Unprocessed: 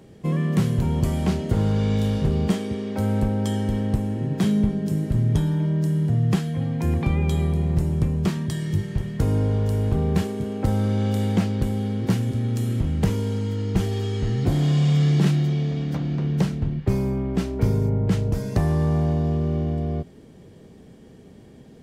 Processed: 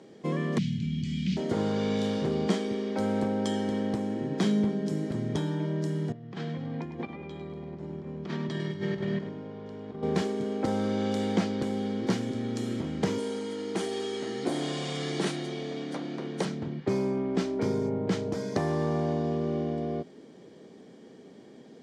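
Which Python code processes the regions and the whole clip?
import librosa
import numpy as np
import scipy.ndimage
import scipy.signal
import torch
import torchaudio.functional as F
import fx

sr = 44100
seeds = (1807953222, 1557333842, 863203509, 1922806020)

y = fx.chain(x, sr, fx.cheby1_bandstop(low_hz=200.0, high_hz=2500.0, order=3),
    fx.air_absorb(metres=130.0),
    fx.env_flatten(amount_pct=70), at=(0.58, 1.37))
y = fx.chain(y, sr, fx.lowpass(hz=3600.0, slope=12),
    fx.over_compress(threshold_db=-30.0, ratio=-1.0),
    fx.echo_feedback(ms=102, feedback_pct=44, wet_db=-10.0), at=(6.12, 10.03))
y = fx.chain(y, sr, fx.highpass(hz=250.0, slope=12),
    fx.peak_eq(hz=9300.0, db=14.5, octaves=0.29),
    fx.notch(hz=5100.0, q=26.0), at=(13.18, 16.45))
y = scipy.signal.sosfilt(scipy.signal.cheby1(2, 1.0, [280.0, 6000.0], 'bandpass', fs=sr, output='sos'), y)
y = fx.notch(y, sr, hz=2700.0, q=11.0)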